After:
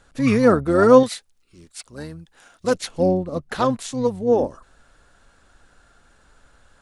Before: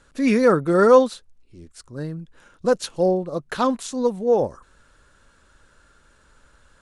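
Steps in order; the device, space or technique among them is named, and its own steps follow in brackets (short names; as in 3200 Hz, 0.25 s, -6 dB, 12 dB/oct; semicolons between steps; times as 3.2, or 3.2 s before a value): 1.03–2.74 tilt +2.5 dB/oct; octave pedal (harmoniser -12 st -8 dB)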